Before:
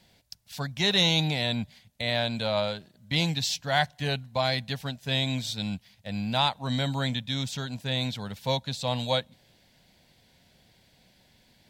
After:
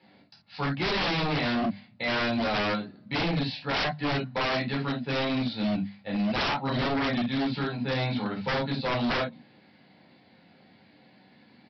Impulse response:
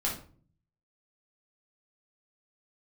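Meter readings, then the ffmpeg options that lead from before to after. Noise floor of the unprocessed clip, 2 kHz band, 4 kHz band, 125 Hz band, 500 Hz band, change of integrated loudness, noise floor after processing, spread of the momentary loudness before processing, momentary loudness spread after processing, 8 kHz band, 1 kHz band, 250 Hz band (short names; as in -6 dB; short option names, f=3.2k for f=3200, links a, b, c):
-63 dBFS, +2.0 dB, -5.0 dB, -2.5 dB, +0.5 dB, -0.5 dB, -59 dBFS, 10 LU, 6 LU, under -15 dB, +1.5 dB, +4.5 dB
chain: -filter_complex "[0:a]acrossover=split=2900[a][b];[b]acompressor=threshold=-33dB:ratio=4:attack=1:release=60[c];[a][c]amix=inputs=2:normalize=0,highpass=f=120:w=0.5412,highpass=f=120:w=1.3066,equalizer=f=120:t=q:w=4:g=-5,equalizer=f=280:t=q:w=4:g=8,equalizer=f=1.2k:t=q:w=4:g=3,equalizer=f=3.3k:t=q:w=4:g=-9,lowpass=f=4.1k:w=0.5412,lowpass=f=4.1k:w=1.3066,bandreject=f=50:t=h:w=6,bandreject=f=100:t=h:w=6,bandreject=f=150:t=h:w=6,bandreject=f=200:t=h:w=6[d];[1:a]atrim=start_sample=2205,atrim=end_sample=3969[e];[d][e]afir=irnorm=-1:irlink=0,aresample=11025,aeval=exprs='0.0794*(abs(mod(val(0)/0.0794+3,4)-2)-1)':c=same,aresample=44100"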